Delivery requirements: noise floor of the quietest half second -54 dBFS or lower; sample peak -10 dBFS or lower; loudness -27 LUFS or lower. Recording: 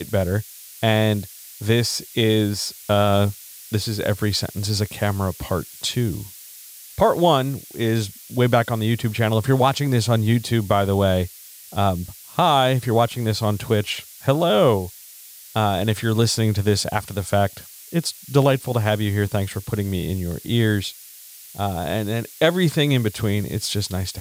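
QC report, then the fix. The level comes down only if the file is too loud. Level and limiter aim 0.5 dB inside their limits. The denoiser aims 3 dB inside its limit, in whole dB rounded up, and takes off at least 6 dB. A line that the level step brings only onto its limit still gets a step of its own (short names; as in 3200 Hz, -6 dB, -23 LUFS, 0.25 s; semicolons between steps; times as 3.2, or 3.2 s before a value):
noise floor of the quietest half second -43 dBFS: fail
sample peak -3.5 dBFS: fail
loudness -21.5 LUFS: fail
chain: denoiser 8 dB, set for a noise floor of -43 dBFS; gain -6 dB; limiter -10.5 dBFS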